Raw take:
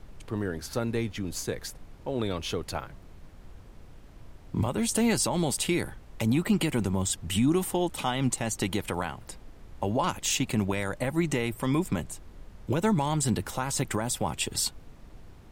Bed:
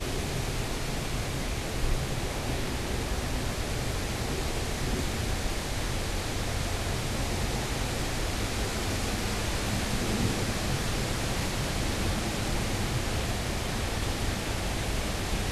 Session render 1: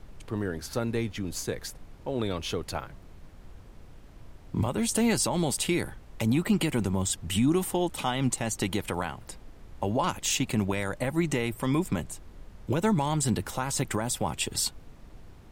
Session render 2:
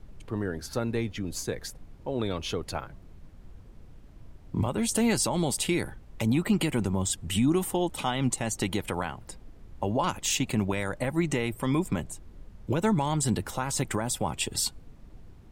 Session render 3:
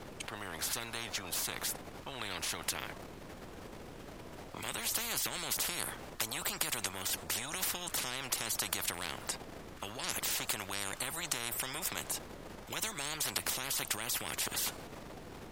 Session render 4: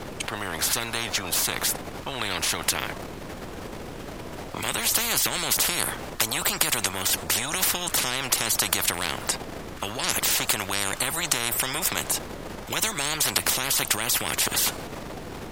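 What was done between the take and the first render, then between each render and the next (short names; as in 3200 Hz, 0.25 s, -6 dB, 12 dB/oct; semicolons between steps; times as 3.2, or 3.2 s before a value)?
nothing audible
denoiser 6 dB, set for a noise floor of -50 dBFS
transient shaper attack +1 dB, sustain +6 dB; spectral compressor 10:1
gain +11.5 dB; limiter -2 dBFS, peak gain reduction 1 dB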